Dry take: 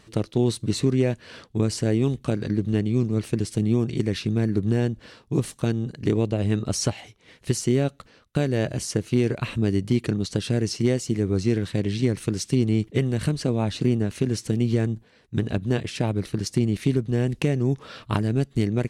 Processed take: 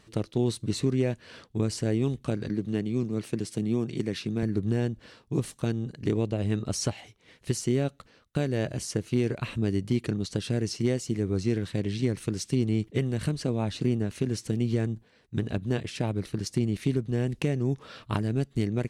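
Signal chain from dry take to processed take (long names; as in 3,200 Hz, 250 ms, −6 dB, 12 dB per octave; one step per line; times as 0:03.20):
0:02.49–0:04.43: high-pass filter 130 Hz
level −4.5 dB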